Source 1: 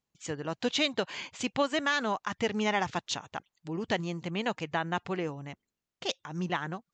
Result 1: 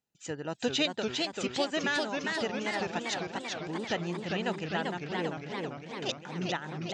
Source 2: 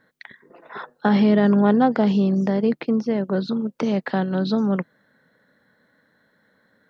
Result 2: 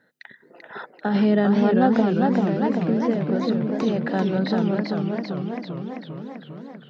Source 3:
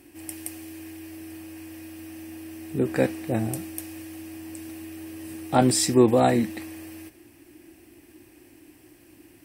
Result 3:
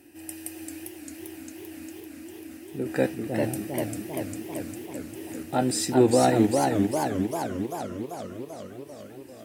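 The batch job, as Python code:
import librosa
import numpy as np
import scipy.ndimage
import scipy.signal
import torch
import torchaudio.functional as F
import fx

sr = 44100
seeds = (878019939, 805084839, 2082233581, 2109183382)

y = fx.tremolo_random(x, sr, seeds[0], hz=3.5, depth_pct=55)
y = fx.notch_comb(y, sr, f0_hz=1100.0)
y = fx.echo_warbled(y, sr, ms=396, feedback_pct=68, rate_hz=2.8, cents=191, wet_db=-3.5)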